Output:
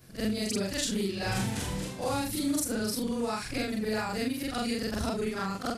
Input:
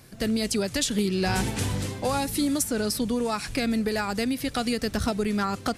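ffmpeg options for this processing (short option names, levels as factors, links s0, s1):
-af "afftfilt=real='re':imag='-im':win_size=4096:overlap=0.75"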